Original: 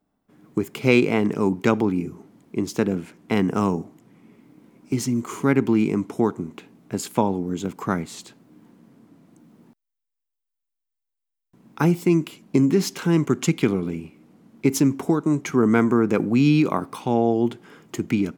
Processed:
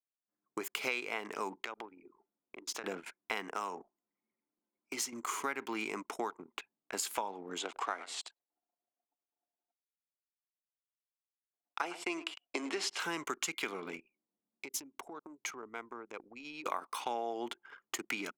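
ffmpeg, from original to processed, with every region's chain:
ffmpeg -i in.wav -filter_complex "[0:a]asettb=1/sr,asplit=3[link_01][link_02][link_03];[link_01]atrim=end=1.554[link_04];[link_02]atrim=start=1.55:end=2.84,asetpts=PTS-STARTPTS,afade=type=in:duration=0.004:curve=qsin,afade=type=out:start_time=1.286:duration=0.004:curve=qsin,highpass=160,highshelf=frequency=7900:gain=-8.5,acompressor=threshold=-31dB:ratio=8:attack=3.2:release=140:knee=1:detection=peak[link_05];[link_03]atrim=start=2.836[link_06];[link_04][link_05]acrossfade=duration=0.004:curve1=hsin:curve2=qsin[link_07];[link_07][link_06]acrossfade=duration=0.004:curve1=qsin:curve2=hsin,asettb=1/sr,asplit=3[link_08][link_09][link_10];[link_08]atrim=end=3.484[link_11];[link_09]atrim=start=3.48:end=5.13,asetpts=PTS-STARTPTS,afade=type=in:duration=0.004:curve=qsin,afade=type=out:start_time=1.646:duration=0.004:curve=qsin,highpass=160,acompressor=threshold=-28dB:ratio=1.5:attack=3.2:release=140:knee=1:detection=peak[link_12];[link_10]atrim=start=5.126[link_13];[link_11][link_12]acrossfade=duration=0.004:curve1=hsin:curve2=qsin[link_14];[link_14][link_13]acrossfade=duration=0.004:curve1=qsin:curve2=hsin,asettb=1/sr,asplit=3[link_15][link_16][link_17];[link_15]atrim=end=7.584[link_18];[link_16]atrim=start=7.58:end=13,asetpts=PTS-STARTPTS,afade=type=in:duration=0.004:curve=qsin,afade=type=out:start_time=5.416:duration=0.004:curve=qsin,aeval=exprs='sgn(val(0))*max(abs(val(0))-0.00282,0)':channel_layout=same,highpass=frequency=240:width=0.5412,highpass=frequency=240:width=1.3066,equalizer=frequency=700:width_type=q:width=4:gain=6,equalizer=frequency=3000:width_type=q:width=4:gain=4,equalizer=frequency=6400:width_type=q:width=4:gain=-5,lowpass=frequency=8900:width=0.5412,lowpass=frequency=8900:width=1.3066,aecho=1:1:104:0.158,atrim=end_sample=239022[link_19];[link_17]atrim=start=12.996[link_20];[link_18][link_19]acrossfade=duration=0.004:curve1=hsin:curve2=qsin[link_21];[link_21][link_20]acrossfade=duration=0.004:curve1=qsin:curve2=hsin,asettb=1/sr,asplit=3[link_22][link_23][link_24];[link_22]atrim=end=14.004[link_25];[link_23]atrim=start=14:end=16.66,asetpts=PTS-STARTPTS,afade=type=in:duration=0.004:curve=qsin,afade=type=out:start_time=2.656:duration=0.004:curve=qsin,equalizer=frequency=1500:width=1.4:gain=-5.5,acompressor=threshold=-38dB:ratio=2.5:attack=3.2:release=140:knee=1:detection=peak[link_26];[link_24]atrim=start=16.656[link_27];[link_25][link_26]acrossfade=duration=0.004:curve1=hsin:curve2=qsin[link_28];[link_28][link_27]acrossfade=duration=0.004:curve1=qsin:curve2=hsin,highpass=880,anlmdn=0.0158,acompressor=threshold=-36dB:ratio=5,volume=2.5dB" out.wav

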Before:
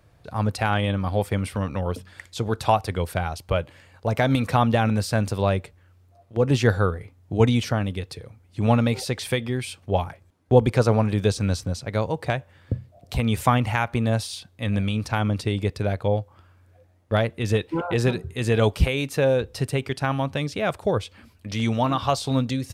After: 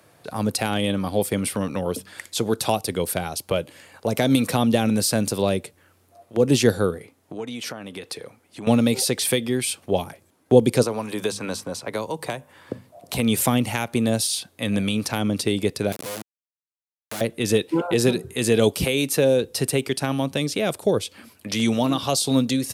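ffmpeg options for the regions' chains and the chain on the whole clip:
ffmpeg -i in.wav -filter_complex "[0:a]asettb=1/sr,asplit=3[link_01][link_02][link_03];[link_01]atrim=end=6.984[link_04];[link_02]atrim=start=6.98:end=8.67,asetpts=PTS-STARTPTS,afade=type=in:duration=0.004:curve=qsin,afade=type=out:start_time=1.686:duration=0.004:curve=qsin,highpass=frequency=200:poles=1,highshelf=frequency=8200:gain=-5,acompressor=threshold=-35dB:ratio=4:attack=3.2:release=140:knee=1:detection=peak[link_05];[link_03]atrim=start=8.666[link_06];[link_04][link_05]acrossfade=duration=0.004:curve1=hsin:curve2=qsin[link_07];[link_07][link_06]acrossfade=duration=0.004:curve1=qsin:curve2=hsin,asettb=1/sr,asplit=3[link_08][link_09][link_10];[link_08]atrim=end=10.834[link_11];[link_09]atrim=start=10.83:end=13.13,asetpts=PTS-STARTPTS,afade=type=in:duration=0.004:curve=qsin,afade=type=out:start_time=2.296:duration=0.004:curve=qsin,equalizer=frequency=1000:width=3.4:gain=7.5,bandreject=frequency=50:width_type=h:width=6,bandreject=frequency=100:width_type=h:width=6,bandreject=frequency=150:width_type=h:width=6,bandreject=frequency=200:width_type=h:width=6,bandreject=frequency=250:width_type=h:width=6,acrossover=split=300|1200|2900|6300[link_12][link_13][link_14][link_15][link_16];[link_12]acompressor=threshold=-37dB:ratio=3[link_17];[link_13]acompressor=threshold=-30dB:ratio=3[link_18];[link_14]acompressor=threshold=-35dB:ratio=3[link_19];[link_15]acompressor=threshold=-51dB:ratio=3[link_20];[link_16]acompressor=threshold=-51dB:ratio=3[link_21];[link_17][link_18][link_19][link_20][link_21]amix=inputs=5:normalize=0[link_22];[link_10]atrim=start=13.126[link_23];[link_11][link_22]acrossfade=duration=0.004:curve1=hsin:curve2=qsin[link_24];[link_24][link_23]acrossfade=duration=0.004:curve1=qsin:curve2=hsin,asettb=1/sr,asplit=3[link_25][link_26][link_27];[link_25]atrim=end=15.924[link_28];[link_26]atrim=start=15.92:end=17.21,asetpts=PTS-STARTPTS,afade=type=in:duration=0.004:curve=qsin,afade=type=out:start_time=1.286:duration=0.004:curve=qsin,bandreject=frequency=91.44:width_type=h:width=4,bandreject=frequency=182.88:width_type=h:width=4,bandreject=frequency=274.32:width_type=h:width=4,acompressor=threshold=-28dB:ratio=6:attack=3.2:release=140:knee=1:detection=peak,acrusher=bits=3:dc=4:mix=0:aa=0.000001[link_29];[link_27]atrim=start=17.206[link_30];[link_28][link_29]acrossfade=duration=0.004:curve1=hsin:curve2=qsin[link_31];[link_31][link_30]acrossfade=duration=0.004:curve1=qsin:curve2=hsin,highpass=220,equalizer=frequency=11000:width_type=o:width=0.89:gain=9,acrossover=split=490|3000[link_32][link_33][link_34];[link_33]acompressor=threshold=-43dB:ratio=2.5[link_35];[link_32][link_35][link_34]amix=inputs=3:normalize=0,volume=7dB" out.wav

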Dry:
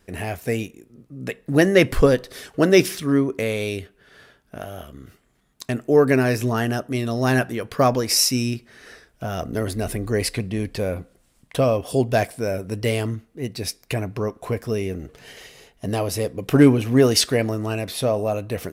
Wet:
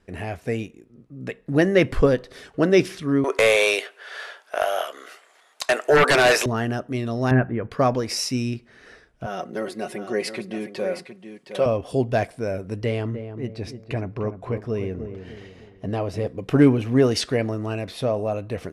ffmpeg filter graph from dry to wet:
ffmpeg -i in.wav -filter_complex "[0:a]asettb=1/sr,asplit=3[link_01][link_02][link_03];[link_01]atrim=end=3.244[link_04];[link_02]atrim=start=3.24:end=6.46,asetpts=PTS-STARTPTS,afade=type=in:duration=0.004:curve=qsin,afade=type=out:start_time=3.216:duration=0.004:curve=qsin,highpass=frequency=550:width=0.5412,highpass=frequency=550:width=1.3066,highshelf=frequency=4000:gain=5,aeval=exprs='0.376*sin(PI/2*4.47*val(0)/0.376)':channel_layout=same[link_05];[link_03]atrim=start=6.456[link_06];[link_04][link_05]acrossfade=duration=0.004:curve1=hsin:curve2=qsin[link_07];[link_07][link_06]acrossfade=duration=0.004:curve1=qsin:curve2=hsin,asettb=1/sr,asplit=3[link_08][link_09][link_10];[link_08]atrim=end=7.314[link_11];[link_09]atrim=start=7.31:end=7.71,asetpts=PTS-STARTPTS,afade=type=in:duration=0.004:curve=qsin,afade=type=out:start_time=0.396:duration=0.004:curve=qsin,lowpass=frequency=2200:width=0.5412,lowpass=frequency=2200:width=1.3066,lowshelf=frequency=220:gain=8.5[link_12];[link_10]atrim=start=7.706[link_13];[link_11][link_12]acrossfade=duration=0.004:curve1=hsin:curve2=qsin[link_14];[link_14][link_13]acrossfade=duration=0.004:curve1=qsin:curve2=hsin,asettb=1/sr,asplit=3[link_15][link_16][link_17];[link_15]atrim=end=9.264[link_18];[link_16]atrim=start=9.26:end=11.66,asetpts=PTS-STARTPTS,afade=type=in:duration=0.004:curve=qsin,afade=type=out:start_time=2.396:duration=0.004:curve=qsin,highpass=290,aecho=1:1:5.4:0.7,atrim=end_sample=105840,aecho=1:1:715:0.316,atrim=end_sample=105840[link_19];[link_17]atrim=start=11.656[link_20];[link_18][link_19]acrossfade=duration=0.004:curve1=hsin:curve2=qsin[link_21];[link_21][link_20]acrossfade=duration=0.004:curve1=qsin:curve2=hsin,asettb=1/sr,asplit=3[link_22][link_23][link_24];[link_22]atrim=end=12.844[link_25];[link_23]atrim=start=12.84:end=16.27,asetpts=PTS-STARTPTS,afade=type=in:duration=0.004:curve=qsin,afade=type=out:start_time=3.426:duration=0.004:curve=qsin,lowpass=frequency=3100:poles=1,asplit=2[link_26][link_27];[link_27]adelay=301,lowpass=frequency=1000:poles=1,volume=-8.5dB,asplit=2[link_28][link_29];[link_29]adelay=301,lowpass=frequency=1000:poles=1,volume=0.43,asplit=2[link_30][link_31];[link_31]adelay=301,lowpass=frequency=1000:poles=1,volume=0.43,asplit=2[link_32][link_33];[link_33]adelay=301,lowpass=frequency=1000:poles=1,volume=0.43,asplit=2[link_34][link_35];[link_35]adelay=301,lowpass=frequency=1000:poles=1,volume=0.43[link_36];[link_26][link_28][link_30][link_32][link_34][link_36]amix=inputs=6:normalize=0,atrim=end_sample=151263[link_37];[link_24]atrim=start=16.266[link_38];[link_25][link_37]acrossfade=duration=0.004:curve1=hsin:curve2=qsin[link_39];[link_39][link_38]acrossfade=duration=0.004:curve1=qsin:curve2=hsin,lowpass=frequency=12000:width=0.5412,lowpass=frequency=12000:width=1.3066,aemphasis=mode=reproduction:type=50kf,volume=-2dB" out.wav

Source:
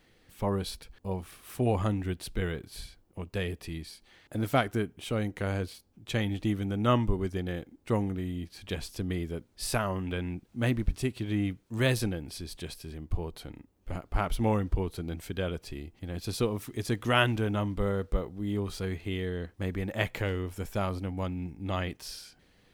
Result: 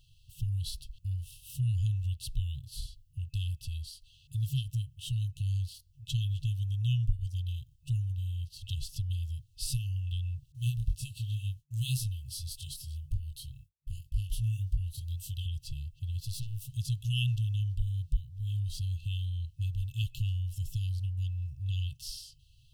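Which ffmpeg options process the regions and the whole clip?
ffmpeg -i in.wav -filter_complex "[0:a]asettb=1/sr,asplit=3[link_01][link_02][link_03];[link_01]atrim=end=10.524[link_04];[link_02]atrim=start=10.52:end=15.46,asetpts=PTS-STARTPTS,afade=type=in:duration=0.004:curve=qsin,afade=type=out:start_time=4.936:duration=0.004:curve=qsin,agate=range=-33dB:threshold=-52dB:ratio=3:release=100:detection=peak,aemphasis=mode=production:type=cd,flanger=delay=19.5:depth=7.6:speed=1.9[link_05];[link_03]atrim=start=15.456[link_06];[link_04][link_05]acrossfade=duration=0.004:curve1=hsin:curve2=qsin[link_07];[link_07][link_06]acrossfade=duration=0.004:curve1=qsin:curve2=hsin,asettb=1/sr,asplit=3[link_08][link_09][link_10];[link_08]atrim=end=16.204[link_11];[link_09]atrim=start=16.2:end=16.69,asetpts=PTS-STARTPTS,afade=type=in:duration=0.004:curve=qsin,afade=type=out:start_time=0.486:duration=0.004:curve=qsin,highshelf=frequency=8700:gain=5.5,aeval=exprs='(tanh(44.7*val(0)+0.75)-tanh(0.75))/44.7':channel_layout=same[link_12];[link_10]atrim=start=16.686[link_13];[link_11][link_12]acrossfade=duration=0.004:curve1=hsin:curve2=qsin[link_14];[link_14][link_13]acrossfade=duration=0.004:curve1=qsin:curve2=hsin,afftfilt=real='re*(1-between(b*sr/4096,150,2600))':imag='im*(1-between(b*sr/4096,150,2600))':win_size=4096:overlap=0.75,lowshelf=frequency=490:gain=7,acompressor=threshold=-34dB:ratio=1.5" out.wav

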